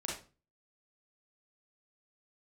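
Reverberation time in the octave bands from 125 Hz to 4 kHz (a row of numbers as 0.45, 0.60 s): 0.50, 0.45, 0.35, 0.35, 0.30, 0.30 s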